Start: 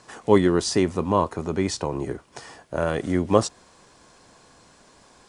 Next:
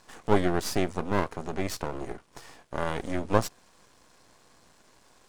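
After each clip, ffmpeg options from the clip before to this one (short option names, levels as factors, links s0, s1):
-af "aeval=exprs='max(val(0),0)':c=same,volume=0.794"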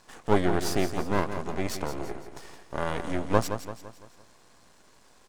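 -af "aecho=1:1:169|338|507|676|845:0.335|0.154|0.0709|0.0326|0.015"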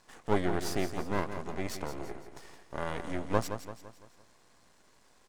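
-af "equalizer=f=2000:w=5.9:g=2.5,volume=0.531"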